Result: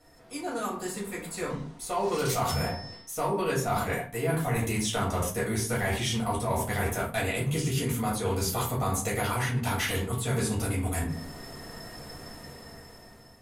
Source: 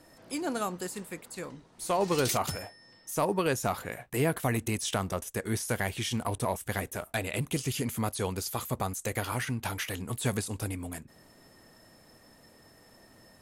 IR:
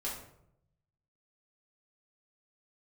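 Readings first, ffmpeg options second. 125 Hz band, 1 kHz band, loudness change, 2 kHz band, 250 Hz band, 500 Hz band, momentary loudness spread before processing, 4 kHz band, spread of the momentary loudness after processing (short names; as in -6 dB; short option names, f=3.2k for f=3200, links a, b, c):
+4.5 dB, +3.0 dB, +2.5 dB, +3.0 dB, +2.0 dB, +2.0 dB, 12 LU, +2.5 dB, 14 LU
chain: -filter_complex "[0:a]dynaudnorm=f=390:g=7:m=16dB[a];[1:a]atrim=start_sample=2205,asetrate=74970,aresample=44100[b];[a][b]afir=irnorm=-1:irlink=0,areverse,acompressor=threshold=-28dB:ratio=5,areverse,volume=1.5dB"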